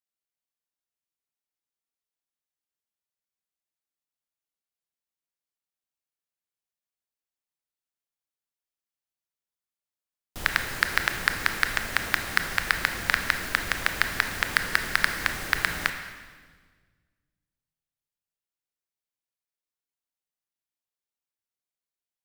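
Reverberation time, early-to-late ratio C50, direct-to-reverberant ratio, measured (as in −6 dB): 1.6 s, 7.5 dB, 6.0 dB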